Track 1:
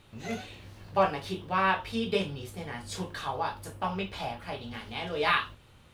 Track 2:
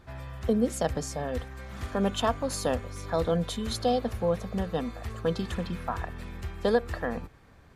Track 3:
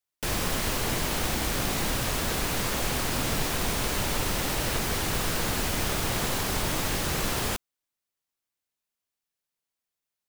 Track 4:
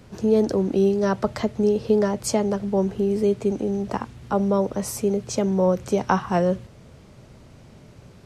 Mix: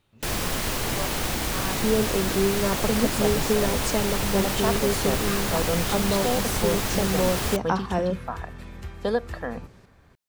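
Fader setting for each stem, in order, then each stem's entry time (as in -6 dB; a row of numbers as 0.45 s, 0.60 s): -11.0 dB, -0.5 dB, +1.0 dB, -4.5 dB; 0.00 s, 2.40 s, 0.00 s, 1.60 s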